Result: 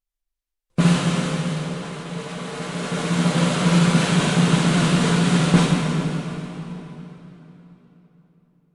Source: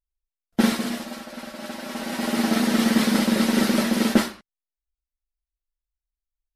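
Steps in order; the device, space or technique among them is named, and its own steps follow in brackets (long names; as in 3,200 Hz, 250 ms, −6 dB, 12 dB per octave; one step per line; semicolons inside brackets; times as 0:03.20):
slowed and reverbed (speed change −25%; convolution reverb RT60 3.7 s, pre-delay 18 ms, DRR −0.5 dB)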